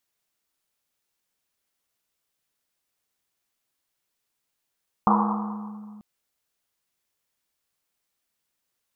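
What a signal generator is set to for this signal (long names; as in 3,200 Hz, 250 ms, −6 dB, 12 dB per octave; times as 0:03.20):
drum after Risset length 0.94 s, pitch 210 Hz, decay 2.69 s, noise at 980 Hz, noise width 480 Hz, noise 45%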